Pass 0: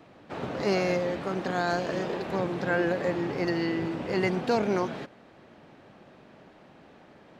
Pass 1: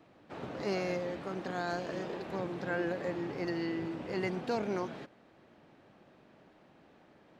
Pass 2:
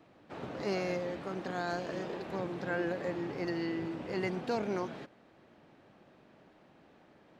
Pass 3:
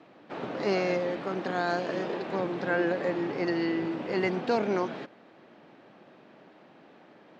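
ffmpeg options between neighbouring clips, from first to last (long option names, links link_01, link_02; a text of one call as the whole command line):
ffmpeg -i in.wav -af "equalizer=frequency=320:width=6.6:gain=2.5,volume=-8dB" out.wav
ffmpeg -i in.wav -af anull out.wav
ffmpeg -i in.wav -af "highpass=180,lowpass=5200,volume=7dB" out.wav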